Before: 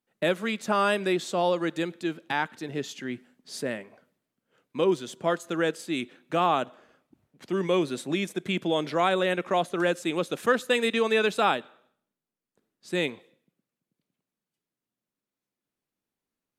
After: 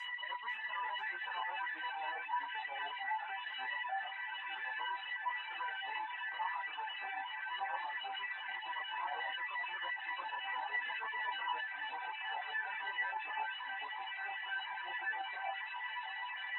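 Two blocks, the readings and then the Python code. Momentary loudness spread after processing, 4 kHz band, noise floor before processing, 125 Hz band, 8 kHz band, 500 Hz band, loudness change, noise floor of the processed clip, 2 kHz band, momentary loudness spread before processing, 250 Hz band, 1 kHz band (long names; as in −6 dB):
3 LU, −8.0 dB, below −85 dBFS, below −40 dB, below −35 dB, −30.0 dB, −12.0 dB, −45 dBFS, −4.0 dB, 10 LU, below −35 dB, −7.5 dB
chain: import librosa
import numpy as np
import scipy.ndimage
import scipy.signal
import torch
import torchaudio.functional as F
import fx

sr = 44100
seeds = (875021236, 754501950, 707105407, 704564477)

p1 = fx.delta_mod(x, sr, bps=16000, step_db=-35.5)
p2 = fx.highpass(p1, sr, hz=460.0, slope=6)
p3 = fx.air_absorb(p2, sr, metres=58.0)
p4 = fx.filter_lfo_highpass(p3, sr, shape='sine', hz=8.5, low_hz=920.0, high_hz=2100.0, q=1.6)
p5 = fx.chorus_voices(p4, sr, voices=6, hz=1.1, base_ms=20, depth_ms=3.0, mix_pct=50)
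p6 = fx.comb_fb(p5, sr, f0_hz=970.0, decay_s=0.25, harmonics='all', damping=0.0, mix_pct=100)
p7 = fx.level_steps(p6, sr, step_db=9)
p8 = p6 + (p7 * librosa.db_to_amplitude(1.0))
p9 = fx.dereverb_blind(p8, sr, rt60_s=0.81)
p10 = fx.echo_pitch(p9, sr, ms=492, semitones=-2, count=2, db_per_echo=-3.0)
p11 = fx.env_flatten(p10, sr, amount_pct=50)
y = p11 * librosa.db_to_amplitude(10.0)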